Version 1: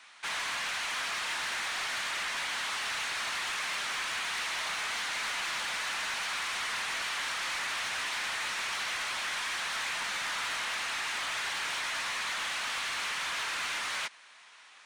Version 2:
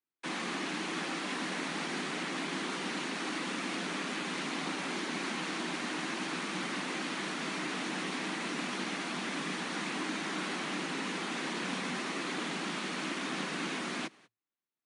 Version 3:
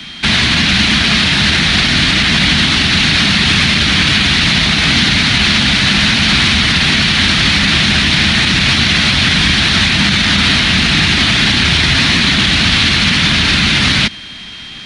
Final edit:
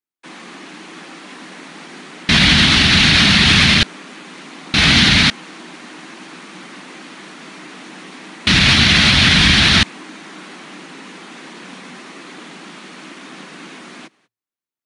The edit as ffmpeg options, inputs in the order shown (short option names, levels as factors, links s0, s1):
-filter_complex "[2:a]asplit=3[s0][s1][s2];[1:a]asplit=4[s3][s4][s5][s6];[s3]atrim=end=2.292[s7];[s0]atrim=start=2.288:end=3.832[s8];[s4]atrim=start=3.828:end=4.742[s9];[s1]atrim=start=4.738:end=5.302[s10];[s5]atrim=start=5.298:end=8.472[s11];[s2]atrim=start=8.468:end=9.832[s12];[s6]atrim=start=9.828[s13];[s7][s8]acrossfade=d=0.004:c1=hsin:c2=hsin[s14];[s14][s9]acrossfade=d=0.004:c1=hsin:c2=hsin[s15];[s15][s10]acrossfade=d=0.004:c1=hsin:c2=hsin[s16];[s16][s11]acrossfade=d=0.004:c1=hsin:c2=hsin[s17];[s17][s12]acrossfade=d=0.004:c1=hsin:c2=hsin[s18];[s18][s13]acrossfade=d=0.004:c1=hsin:c2=hsin"